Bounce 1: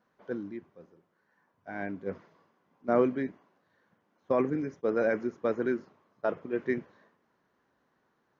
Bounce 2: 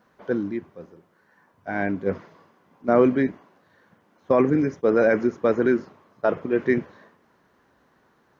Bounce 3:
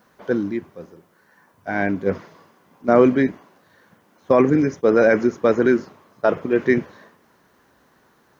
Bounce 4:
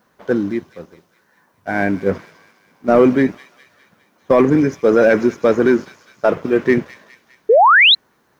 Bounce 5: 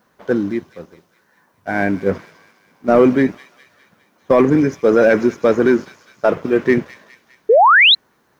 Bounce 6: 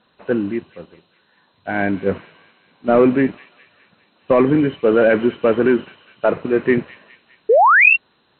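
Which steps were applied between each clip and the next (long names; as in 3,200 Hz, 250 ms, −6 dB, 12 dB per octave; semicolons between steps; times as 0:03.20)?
parametric band 64 Hz +5.5 dB 1 octave; in parallel at +2 dB: brickwall limiter −23.5 dBFS, peak gain reduction 11.5 dB; on the sum: level +4 dB
high-shelf EQ 5,300 Hz +10.5 dB; level +3.5 dB
leveller curve on the samples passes 1; delay with a high-pass on its return 204 ms, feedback 55%, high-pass 3,400 Hz, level −7.5 dB; sound drawn into the spectrogram rise, 0:07.49–0:07.95, 410–4,200 Hz −9 dBFS
no processing that can be heard
hearing-aid frequency compression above 2,400 Hz 4 to 1; level −1.5 dB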